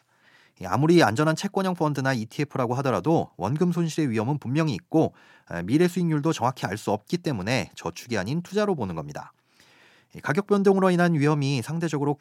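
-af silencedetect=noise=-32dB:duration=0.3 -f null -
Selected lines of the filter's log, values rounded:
silence_start: 0.00
silence_end: 0.61 | silence_duration: 0.61
silence_start: 5.08
silence_end: 5.51 | silence_duration: 0.43
silence_start: 9.23
silence_end: 10.15 | silence_duration: 0.93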